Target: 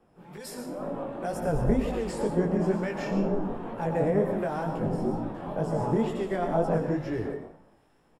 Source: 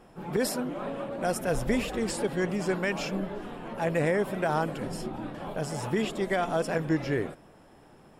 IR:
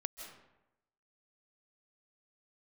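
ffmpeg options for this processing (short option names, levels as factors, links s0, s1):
-filter_complex "[0:a]acrossover=split=140|3000[s0][s1][s2];[s1]acompressor=threshold=0.0398:ratio=6[s3];[s0][s3][s2]amix=inputs=3:normalize=0[s4];[1:a]atrim=start_sample=2205,afade=t=out:st=0.38:d=0.01,atrim=end_sample=17199,asetrate=61740,aresample=44100[s5];[s4][s5]afir=irnorm=-1:irlink=0,flanger=delay=17:depth=6:speed=2.1,acrossover=split=1400[s6][s7];[s6]aeval=exprs='val(0)*(1-0.5/2+0.5/2*cos(2*PI*1.2*n/s))':c=same[s8];[s7]aeval=exprs='val(0)*(1-0.5/2-0.5/2*cos(2*PI*1.2*n/s))':c=same[s9];[s8][s9]amix=inputs=2:normalize=0,acrossover=split=1200[s10][s11];[s10]dynaudnorm=f=150:g=13:m=5.62[s12];[s11]aecho=1:1:90|180|270|360|450:0.224|0.11|0.0538|0.0263|0.0129[s13];[s12][s13]amix=inputs=2:normalize=0"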